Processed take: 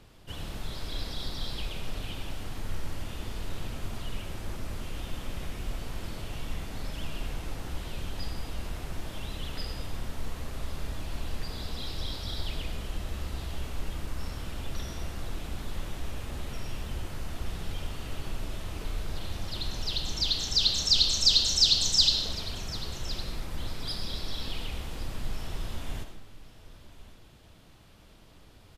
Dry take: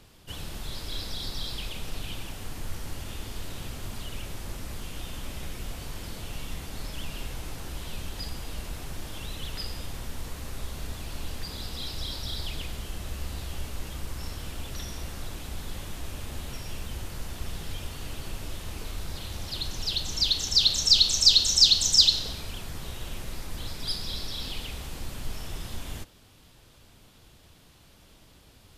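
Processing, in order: treble shelf 3.9 kHz -7.5 dB; delay 1109 ms -18 dB; reverberation RT60 0.75 s, pre-delay 40 ms, DRR 6.5 dB

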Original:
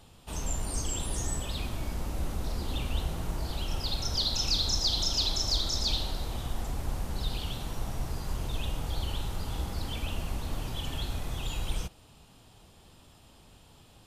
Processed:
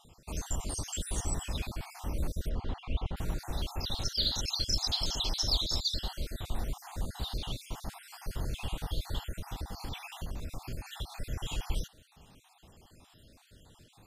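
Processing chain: random holes in the spectrogram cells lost 48%; 2.49–3.17 s: low-pass 2.5 kHz 12 dB/octave; 9.36–11.12 s: compression, threshold -33 dBFS, peak gain reduction 6.5 dB

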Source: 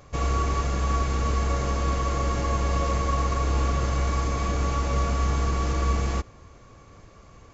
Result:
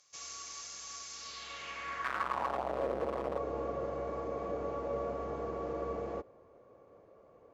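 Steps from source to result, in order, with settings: 2.04–3.38 s: Schmitt trigger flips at -33.5 dBFS; band-pass sweep 5.8 kHz -> 520 Hz, 1.12–2.84 s

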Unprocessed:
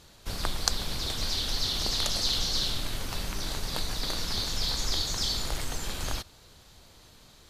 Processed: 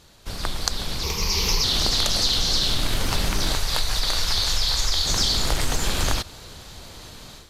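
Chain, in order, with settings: level rider gain up to 11.5 dB; 1.03–1.64 s: rippled EQ curve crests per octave 0.8, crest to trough 14 dB; compression, threshold -19 dBFS, peak gain reduction 7 dB; 3.55–5.06 s: peaking EQ 240 Hz -12 dB 1.8 oct; loudspeaker Doppler distortion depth 0.19 ms; trim +2 dB

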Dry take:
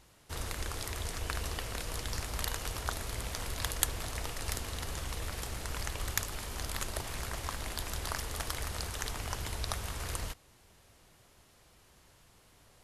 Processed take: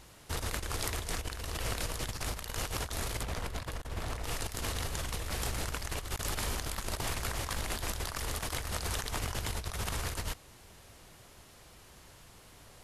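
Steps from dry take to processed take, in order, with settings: compressor with a negative ratio -39 dBFS, ratio -0.5; 3.23–4.24 s: treble shelf 3.3 kHz -10 dB; trim +4 dB

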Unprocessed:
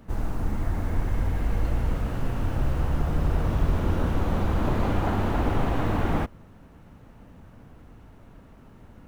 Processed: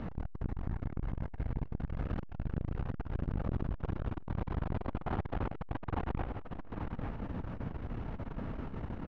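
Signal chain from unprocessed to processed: dynamic bell 200 Hz, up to -3 dB, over -35 dBFS, Q 0.78; compression 16:1, threshold -37 dBFS, peak gain reduction 20.5 dB; distance through air 240 m; on a send: delay 841 ms -7.5 dB; on the sum: transformer saturation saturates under 210 Hz; trim +11.5 dB

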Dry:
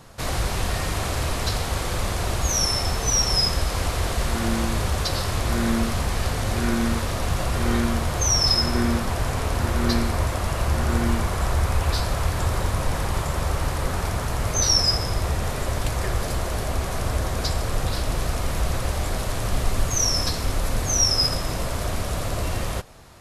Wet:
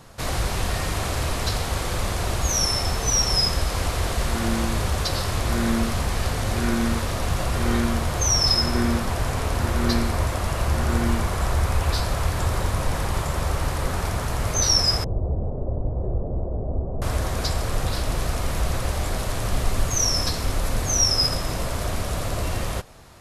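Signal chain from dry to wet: 15.04–17.02 s: inverse Chebyshev low-pass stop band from 3.7 kHz, stop band 80 dB

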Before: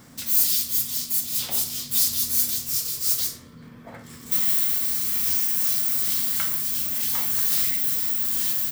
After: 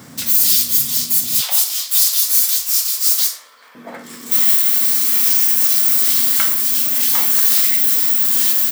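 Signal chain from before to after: high-pass 91 Hz 24 dB/octave, from 1.41 s 670 Hz, from 3.75 s 220 Hz; loudness maximiser +10.5 dB; trim -1 dB

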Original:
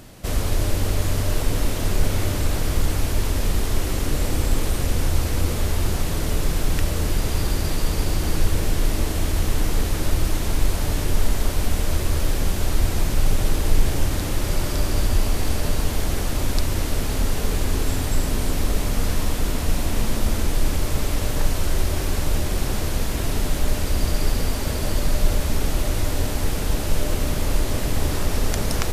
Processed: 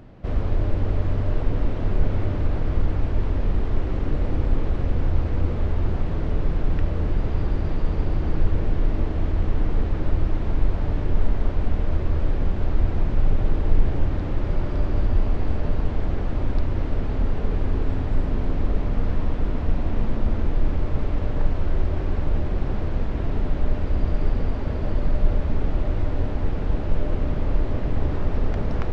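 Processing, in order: tape spacing loss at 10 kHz 45 dB

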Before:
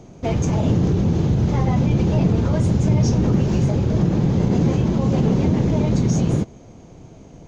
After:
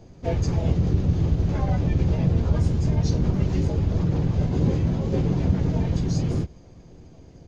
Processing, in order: chorus voices 6, 0.5 Hz, delay 12 ms, depth 1.5 ms; harmony voices -5 st 0 dB; trim -5.5 dB

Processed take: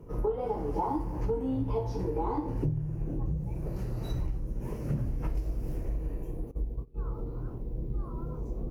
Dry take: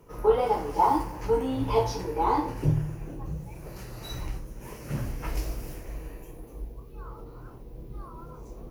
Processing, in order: 6.51–7.09 s: gate -41 dBFS, range -19 dB; tilt shelf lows +9 dB, about 760 Hz; compression 8:1, threshold -27 dBFS, peak gain reduction 17 dB

